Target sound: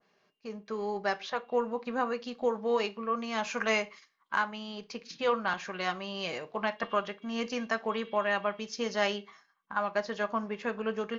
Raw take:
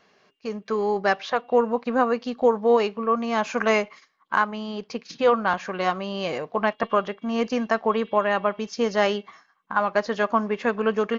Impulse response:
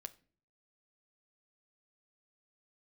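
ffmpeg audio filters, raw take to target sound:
-filter_complex "[0:a]acrossover=split=1300[a][b];[b]dynaudnorm=f=390:g=11:m=4dB[c];[a][c]amix=inputs=2:normalize=0[d];[1:a]atrim=start_sample=2205,afade=t=out:st=0.25:d=0.01,atrim=end_sample=11466,asetrate=66150,aresample=44100[e];[d][e]afir=irnorm=-1:irlink=0,adynamicequalizer=threshold=0.00631:dfrequency=1800:dqfactor=0.7:tfrequency=1800:tqfactor=0.7:attack=5:release=100:ratio=0.375:range=2:mode=boostabove:tftype=highshelf,volume=-1.5dB"

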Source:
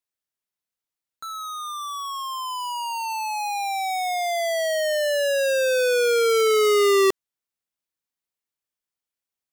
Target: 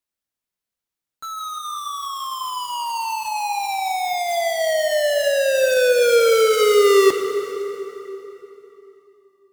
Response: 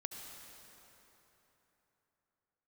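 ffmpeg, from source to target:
-filter_complex "[0:a]flanger=delay=3.4:depth=3.7:regen=-74:speed=0.35:shape=sinusoidal,acrusher=bits=3:mode=log:mix=0:aa=0.000001,asplit=2[a][b];[1:a]atrim=start_sample=2205,lowshelf=f=400:g=7.5[c];[b][c]afir=irnorm=-1:irlink=0,volume=3.5dB[d];[a][d]amix=inputs=2:normalize=0"

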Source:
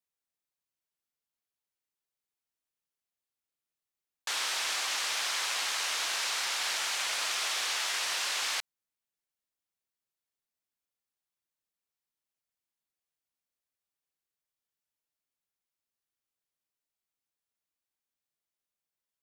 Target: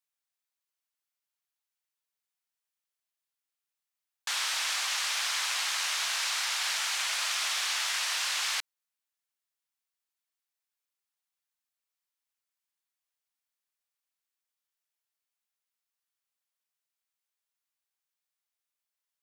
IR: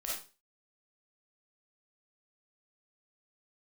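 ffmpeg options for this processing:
-af "highpass=820,volume=1.5dB"

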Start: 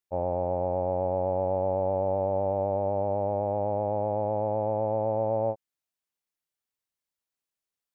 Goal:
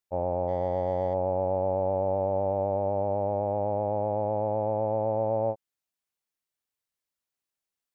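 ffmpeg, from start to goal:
-filter_complex "[0:a]asplit=3[a][b][c];[a]afade=t=out:st=0.47:d=0.02[d];[b]adynamicsmooth=sensitivity=6.5:basefreq=1.7k,afade=t=in:st=0.47:d=0.02,afade=t=out:st=1.13:d=0.02[e];[c]afade=t=in:st=1.13:d=0.02[f];[d][e][f]amix=inputs=3:normalize=0"

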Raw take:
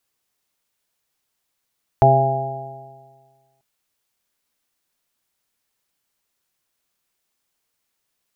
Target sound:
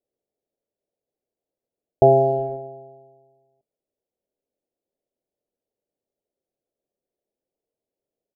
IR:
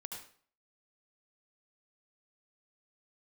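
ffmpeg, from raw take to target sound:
-filter_complex "[0:a]asplit=2[a][b];[b]acrusher=bits=3:mix=0:aa=0.5,volume=-8dB[c];[a][c]amix=inputs=2:normalize=0,firequalizer=gain_entry='entry(110,0);entry(400,12);entry(580,12);entry(1100,-18)':delay=0.05:min_phase=1,volume=-8dB"

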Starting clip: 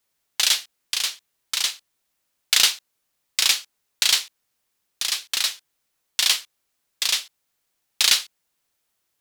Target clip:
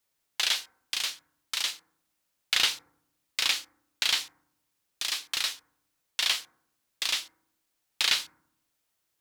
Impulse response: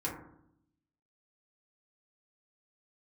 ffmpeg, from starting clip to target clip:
-filter_complex "[0:a]acrossover=split=4100[a][b];[b]acompressor=threshold=-26dB:ratio=4:attack=1:release=60[c];[a][c]amix=inputs=2:normalize=0,asplit=2[d][e];[1:a]atrim=start_sample=2205,lowshelf=f=470:g=5[f];[e][f]afir=irnorm=-1:irlink=0,volume=-17.5dB[g];[d][g]amix=inputs=2:normalize=0,volume=-4.5dB"

